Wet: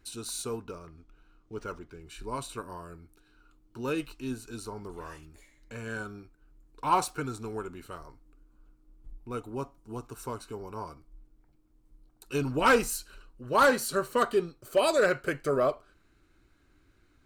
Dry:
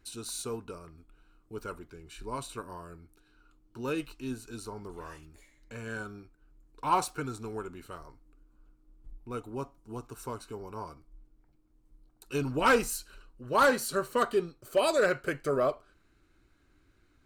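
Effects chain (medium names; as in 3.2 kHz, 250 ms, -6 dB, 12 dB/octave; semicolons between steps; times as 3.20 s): 0.62–2.01 s: decimation joined by straight lines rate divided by 3×; trim +1.5 dB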